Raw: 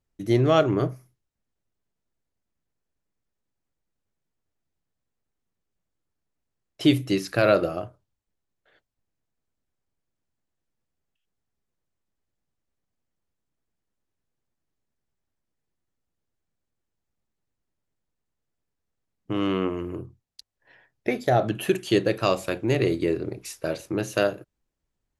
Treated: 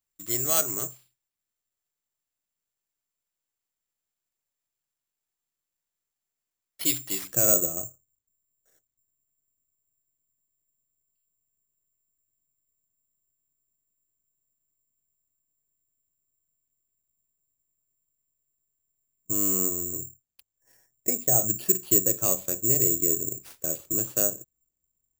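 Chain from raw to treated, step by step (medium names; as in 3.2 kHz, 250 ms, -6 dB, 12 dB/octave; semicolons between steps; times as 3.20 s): tilt shelf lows -6 dB, about 840 Hz, from 7.23 s lows +5.5 dB; careless resampling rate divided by 6×, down none, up zero stuff; trim -11.5 dB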